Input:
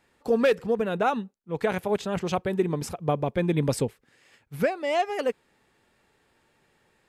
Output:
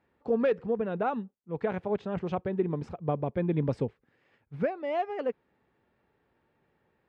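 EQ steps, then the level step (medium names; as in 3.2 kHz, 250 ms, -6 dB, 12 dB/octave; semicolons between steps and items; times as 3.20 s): high-pass 45 Hz; tape spacing loss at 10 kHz 36 dB; -2.5 dB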